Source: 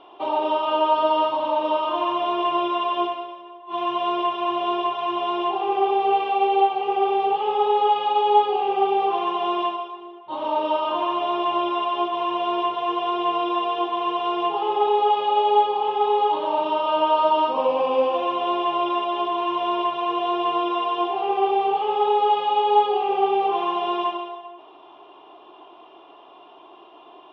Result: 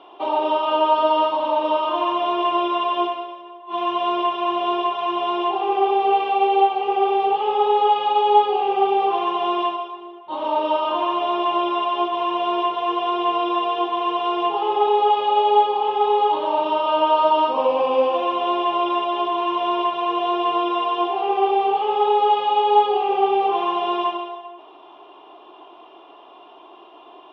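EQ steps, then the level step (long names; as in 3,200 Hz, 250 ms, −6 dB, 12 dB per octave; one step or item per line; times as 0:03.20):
high-pass filter 170 Hz 12 dB per octave
+2.0 dB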